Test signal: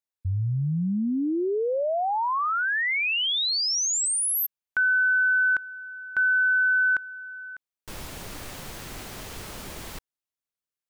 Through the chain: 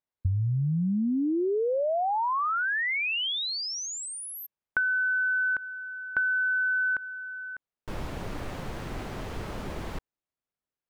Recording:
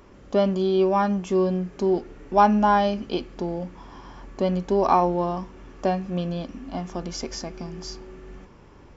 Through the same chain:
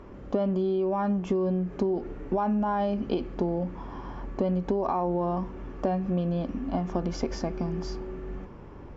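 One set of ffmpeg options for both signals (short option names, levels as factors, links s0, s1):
-af "lowpass=f=1100:p=1,alimiter=limit=0.119:level=0:latency=1:release=68,acompressor=threshold=0.0224:ratio=3:attack=39:release=217:knee=1:detection=peak,volume=1.88"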